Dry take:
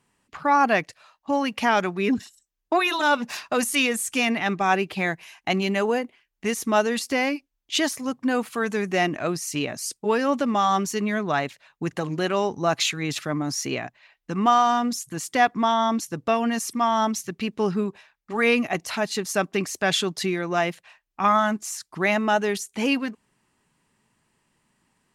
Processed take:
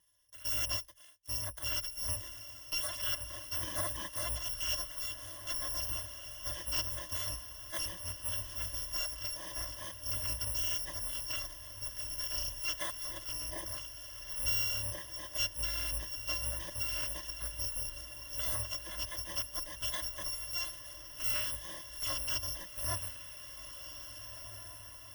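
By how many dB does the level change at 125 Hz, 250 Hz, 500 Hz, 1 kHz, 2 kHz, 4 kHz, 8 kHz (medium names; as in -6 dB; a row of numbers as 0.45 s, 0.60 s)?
-11.0 dB, -31.0 dB, -25.0 dB, -25.5 dB, -18.0 dB, -7.0 dB, -6.0 dB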